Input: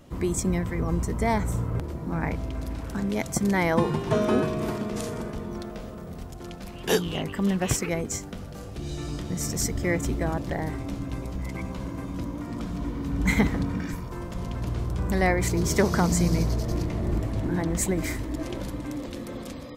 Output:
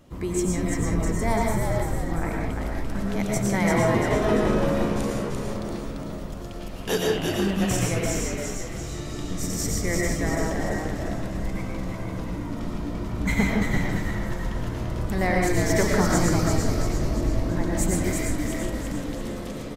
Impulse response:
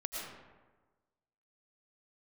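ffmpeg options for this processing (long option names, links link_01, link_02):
-filter_complex "[0:a]asettb=1/sr,asplit=3[link_01][link_02][link_03];[link_01]atrim=end=1.174[link_04];[link_02]atrim=start=1.17:end=1.6,asetpts=PTS-STARTPTS,afade=type=in:duration=0.004:curve=qsin,afade=type=out:start_time=0.426:duration=0.004:curve=qsin,highshelf=frequency=10000:gain=9[link_05];[link_03]atrim=start=1.596[link_06];[link_04][link_05]acrossfade=duration=0.004:curve1=hsin:curve2=qsin[link_07];[link_07][link_06]acrossfade=duration=0.004:curve1=qsin:curve2=hsin,asplit=7[link_08][link_09][link_10][link_11][link_12][link_13][link_14];[link_09]adelay=342,afreqshift=-76,volume=-4dB[link_15];[link_10]adelay=684,afreqshift=-152,volume=-10dB[link_16];[link_11]adelay=1026,afreqshift=-228,volume=-16dB[link_17];[link_12]adelay=1368,afreqshift=-304,volume=-22.1dB[link_18];[link_13]adelay=1710,afreqshift=-380,volume=-28.1dB[link_19];[link_14]adelay=2052,afreqshift=-456,volume=-34.1dB[link_20];[link_08][link_15][link_16][link_17][link_18][link_19][link_20]amix=inputs=7:normalize=0[link_21];[1:a]atrim=start_sample=2205,afade=type=out:start_time=0.27:duration=0.01,atrim=end_sample=12348[link_22];[link_21][link_22]afir=irnorm=-1:irlink=0"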